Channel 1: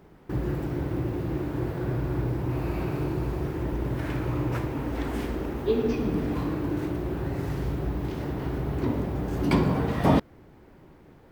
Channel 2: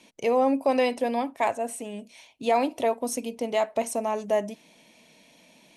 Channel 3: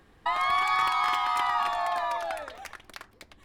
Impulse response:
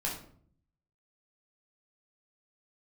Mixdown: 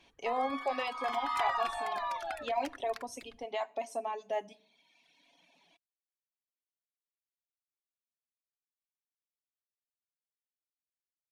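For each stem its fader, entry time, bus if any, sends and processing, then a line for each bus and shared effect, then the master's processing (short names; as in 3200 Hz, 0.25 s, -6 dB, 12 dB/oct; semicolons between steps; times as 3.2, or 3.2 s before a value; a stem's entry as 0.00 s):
off
-9.0 dB, 0.00 s, bus A, send -9.5 dB, low shelf 280 Hz -11.5 dB; comb 7.2 ms, depth 35%
0.88 s -13.5 dB -> 1.39 s -3 dB, 0.00 s, no bus, no send, dry
bus A: 0.0 dB, speaker cabinet 120–7100 Hz, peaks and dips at 520 Hz -7 dB, 750 Hz +9 dB, 3400 Hz +4 dB; limiter -25.5 dBFS, peak gain reduction 8 dB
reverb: on, RT60 0.55 s, pre-delay 9 ms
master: reverb removal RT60 1.3 s; high shelf 9800 Hz -5.5 dB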